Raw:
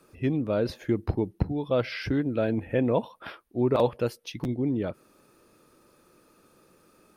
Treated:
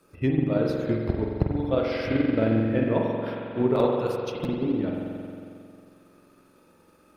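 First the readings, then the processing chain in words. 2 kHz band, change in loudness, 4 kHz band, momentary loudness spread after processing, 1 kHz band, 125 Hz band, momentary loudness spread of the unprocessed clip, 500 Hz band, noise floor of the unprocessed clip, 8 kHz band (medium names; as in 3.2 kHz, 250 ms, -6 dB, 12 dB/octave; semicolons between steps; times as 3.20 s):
+2.0 dB, +2.0 dB, -0.5 dB, 10 LU, +2.0 dB, +2.5 dB, 8 LU, +2.0 dB, -62 dBFS, no reading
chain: spring tank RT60 2.5 s, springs 45 ms, chirp 40 ms, DRR -2.5 dB; transient shaper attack +6 dB, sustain -3 dB; trim -3 dB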